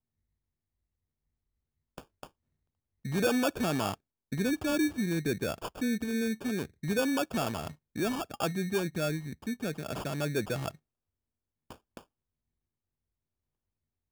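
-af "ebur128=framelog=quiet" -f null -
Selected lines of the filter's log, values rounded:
Integrated loudness:
  I:         -32.1 LUFS
  Threshold: -42.9 LUFS
Loudness range:
  LRA:         7.9 LU
  Threshold: -53.6 LUFS
  LRA low:   -39.0 LUFS
  LRA high:  -31.1 LUFS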